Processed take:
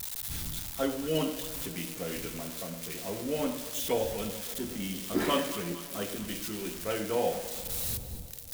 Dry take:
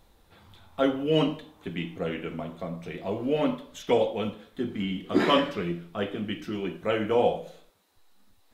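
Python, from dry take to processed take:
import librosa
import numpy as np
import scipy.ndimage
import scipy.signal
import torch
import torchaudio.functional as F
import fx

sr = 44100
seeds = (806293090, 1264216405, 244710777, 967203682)

y = x + 0.5 * 10.0 ** (-20.5 / 20.0) * np.diff(np.sign(x), prepend=np.sign(x[:1]))
y = fx.dmg_wind(y, sr, seeds[0], corner_hz=110.0, level_db=-42.0)
y = fx.echo_alternate(y, sr, ms=113, hz=800.0, feedback_pct=75, wet_db=-11.0)
y = y * 10.0 ** (-6.5 / 20.0)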